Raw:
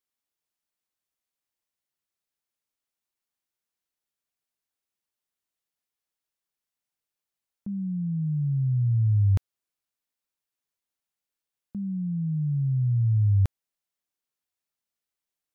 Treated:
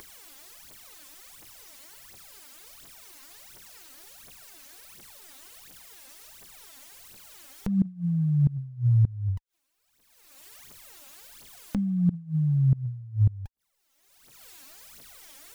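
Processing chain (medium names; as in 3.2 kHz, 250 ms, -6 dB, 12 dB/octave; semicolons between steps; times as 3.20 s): phaser 1.4 Hz, delay 3.9 ms, feedback 77%; upward compressor, threshold -34 dBFS; inverted gate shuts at -21 dBFS, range -25 dB; trim +7.5 dB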